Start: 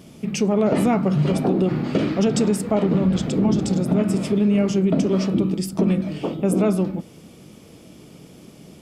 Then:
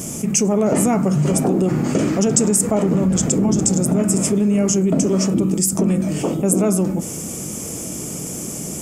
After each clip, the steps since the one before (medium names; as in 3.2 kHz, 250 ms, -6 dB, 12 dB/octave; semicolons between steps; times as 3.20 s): resonant high shelf 5.3 kHz +10.5 dB, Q 3; level flattener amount 50%; trim -1.5 dB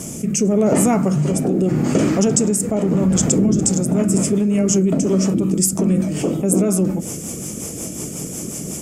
rotary cabinet horn 0.85 Hz, later 5.5 Hz, at 3.23 s; trim +2 dB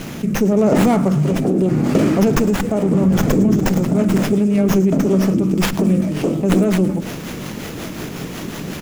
feedback delay 109 ms, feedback 54%, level -20 dB; sliding maximum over 5 samples; trim +1.5 dB